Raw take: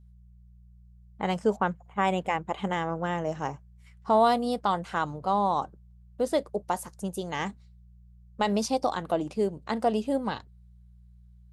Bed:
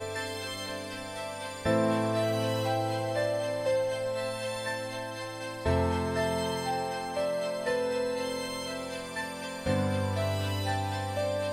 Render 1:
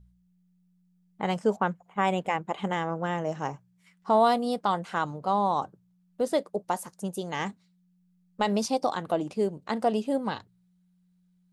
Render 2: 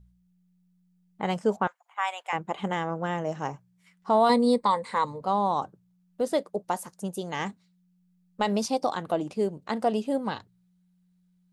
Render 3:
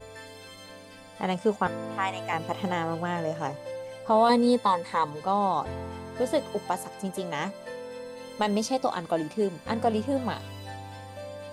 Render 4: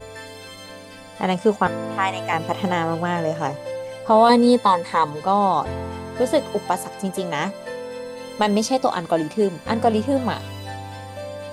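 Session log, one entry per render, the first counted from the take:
hum removal 60 Hz, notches 2
0:01.67–0:02.33: high-pass filter 840 Hz 24 dB per octave; 0:04.29–0:05.21: EQ curve with evenly spaced ripples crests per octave 0.97, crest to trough 15 dB
mix in bed −9.5 dB
level +7 dB

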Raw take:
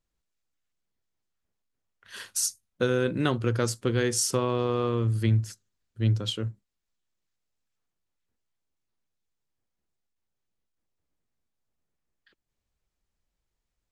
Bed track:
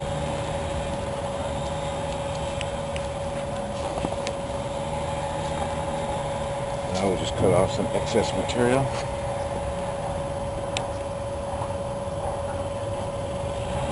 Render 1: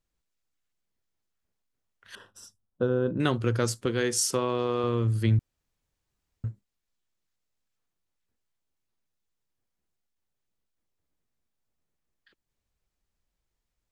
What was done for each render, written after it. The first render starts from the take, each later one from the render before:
0:02.15–0:03.20: moving average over 20 samples
0:03.86–0:04.84: parametric band 62 Hz −12.5 dB 1.9 octaves
0:05.39–0:06.44: fill with room tone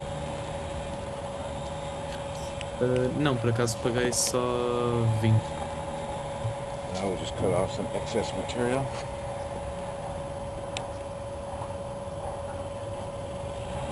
mix in bed track −6 dB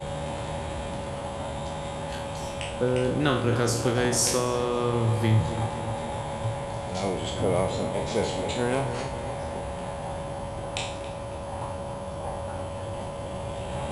peak hold with a decay on every bin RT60 0.59 s
feedback echo with a low-pass in the loop 274 ms, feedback 60%, low-pass 2,300 Hz, level −10.5 dB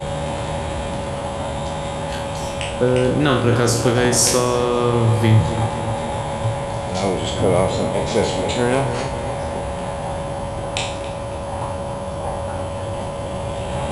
level +8 dB
brickwall limiter −3 dBFS, peak gain reduction 3 dB

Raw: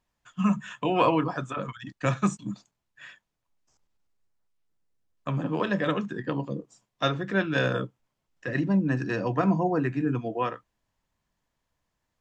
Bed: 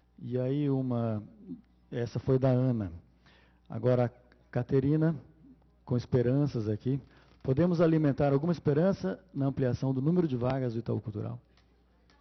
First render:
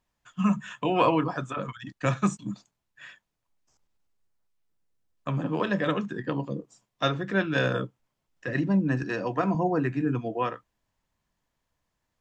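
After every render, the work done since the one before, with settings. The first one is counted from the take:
0:09.03–0:09.55: high-pass filter 240 Hz 6 dB per octave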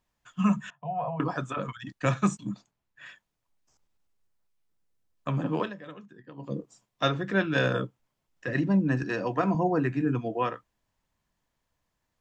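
0:00.70–0:01.20: pair of resonant band-passes 330 Hz, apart 2.2 octaves
0:02.49–0:03.06: high-shelf EQ 4,400 Hz −8 dB
0:05.58–0:06.53: duck −17.5 dB, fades 0.16 s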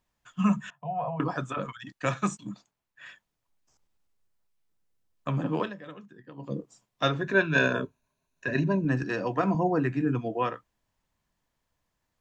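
0:01.65–0:03.07: low-shelf EQ 270 Hz −7 dB
0:07.21–0:08.85: EQ curve with evenly spaced ripples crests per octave 1.5, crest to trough 12 dB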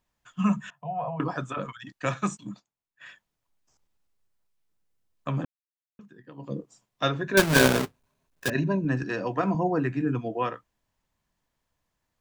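0:02.13–0:03.06: noise gate −54 dBFS, range −11 dB
0:05.45–0:05.99: silence
0:07.37–0:08.50: each half-wave held at its own peak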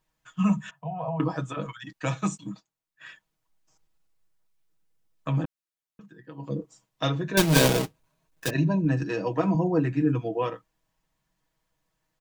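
dynamic equaliser 1,500 Hz, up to −7 dB, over −41 dBFS, Q 1.4
comb filter 6.3 ms, depth 68%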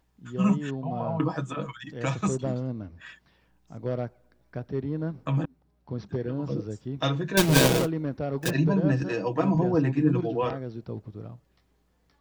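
mix in bed −4 dB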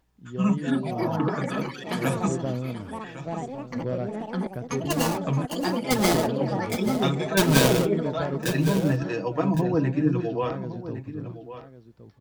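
single-tap delay 1,110 ms −13 dB
delay with pitch and tempo change per echo 383 ms, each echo +5 semitones, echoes 2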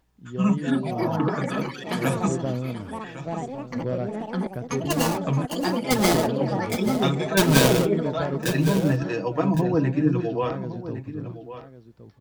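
level +1.5 dB

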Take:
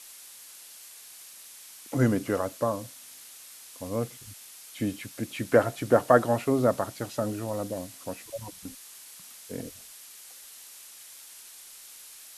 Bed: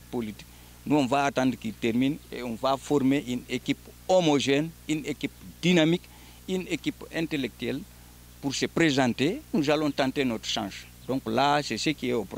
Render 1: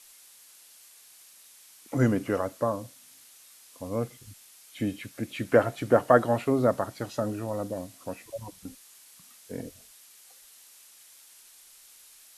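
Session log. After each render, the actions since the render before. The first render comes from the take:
noise reduction from a noise print 6 dB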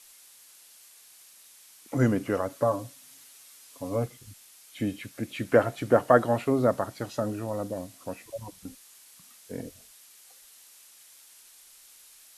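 0:02.49–0:04.06: comb filter 7.1 ms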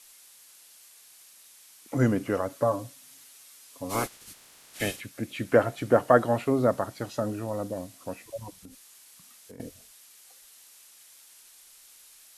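0:03.89–0:04.99: ceiling on every frequency bin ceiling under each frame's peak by 26 dB
0:08.51–0:09.60: downward compressor, threshold −43 dBFS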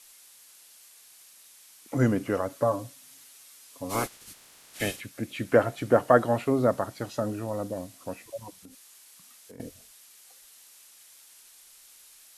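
0:08.28–0:09.55: low-shelf EQ 110 Hz −10.5 dB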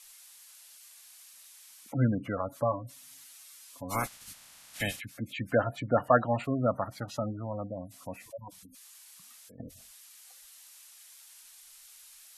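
gate on every frequency bin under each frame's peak −20 dB strong
parametric band 390 Hz −13 dB 0.78 octaves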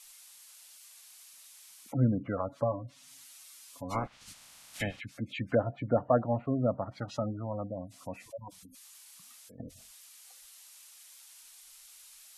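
parametric band 1,700 Hz −2.5 dB 0.43 octaves
treble cut that deepens with the level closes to 750 Hz, closed at −25.5 dBFS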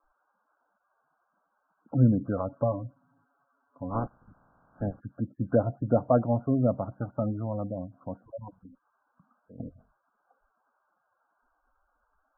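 Chebyshev low-pass filter 1,600 Hz, order 10
tilt shelving filter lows +6 dB, about 1,100 Hz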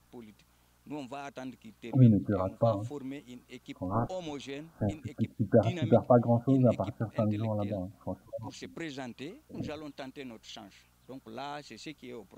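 mix in bed −17 dB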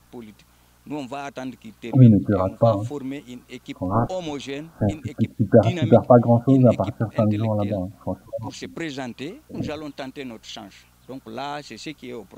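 level +9.5 dB
brickwall limiter −1 dBFS, peak gain reduction 1 dB

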